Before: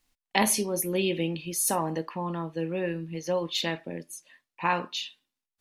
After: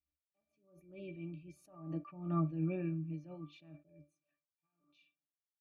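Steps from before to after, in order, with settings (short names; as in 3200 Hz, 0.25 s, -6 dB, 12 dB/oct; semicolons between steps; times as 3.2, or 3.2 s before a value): Doppler pass-by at 2.45, 6 m/s, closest 1.4 m; octave resonator D, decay 0.19 s; attack slew limiter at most 100 dB/s; gain +13.5 dB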